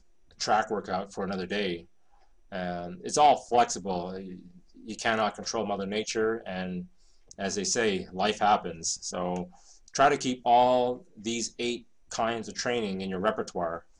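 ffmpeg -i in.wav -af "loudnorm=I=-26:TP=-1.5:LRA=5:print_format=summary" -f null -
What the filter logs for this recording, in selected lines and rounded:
Input Integrated:    -29.0 LUFS
Input True Peak:     -11.7 dBTP
Input LRA:             4.7 LU
Input Threshold:     -39.5 LUFS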